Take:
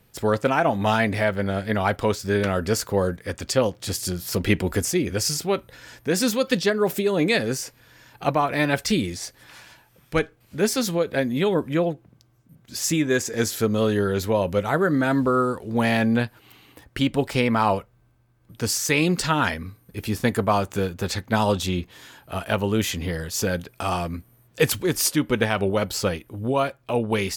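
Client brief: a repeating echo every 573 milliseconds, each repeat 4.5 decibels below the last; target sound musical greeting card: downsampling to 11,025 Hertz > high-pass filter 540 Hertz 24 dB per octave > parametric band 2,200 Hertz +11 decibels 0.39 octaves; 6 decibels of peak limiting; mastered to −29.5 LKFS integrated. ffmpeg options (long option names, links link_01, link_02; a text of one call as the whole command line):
ffmpeg -i in.wav -af "alimiter=limit=-12.5dB:level=0:latency=1,aecho=1:1:573|1146|1719|2292|2865|3438|4011|4584|5157:0.596|0.357|0.214|0.129|0.0772|0.0463|0.0278|0.0167|0.01,aresample=11025,aresample=44100,highpass=frequency=540:width=0.5412,highpass=frequency=540:width=1.3066,equalizer=frequency=2200:width_type=o:width=0.39:gain=11,volume=-4dB" out.wav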